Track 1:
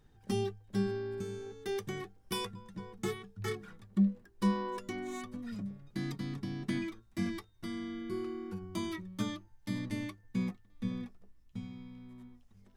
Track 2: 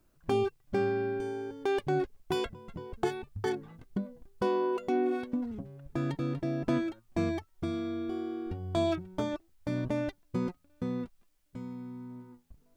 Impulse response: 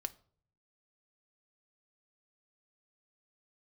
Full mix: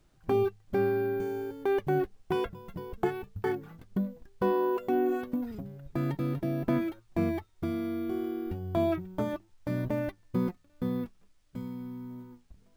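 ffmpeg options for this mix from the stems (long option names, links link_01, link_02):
-filter_complex "[0:a]volume=-6.5dB[link_01];[1:a]acrusher=samples=3:mix=1:aa=0.000001,volume=1dB[link_02];[link_01][link_02]amix=inputs=2:normalize=0,acrossover=split=2600[link_03][link_04];[link_04]acompressor=threshold=-53dB:ratio=4:attack=1:release=60[link_05];[link_03][link_05]amix=inputs=2:normalize=0"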